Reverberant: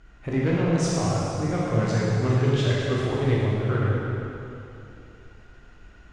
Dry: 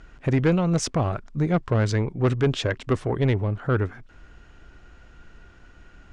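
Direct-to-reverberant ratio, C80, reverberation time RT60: −7.0 dB, −1.5 dB, 2.9 s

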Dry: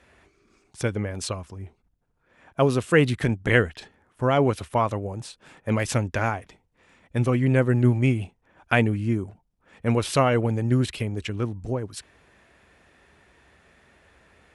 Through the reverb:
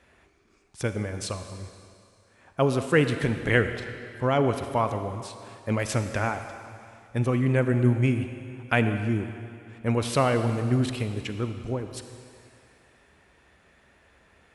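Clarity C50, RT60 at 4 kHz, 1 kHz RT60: 8.5 dB, 2.4 s, 2.5 s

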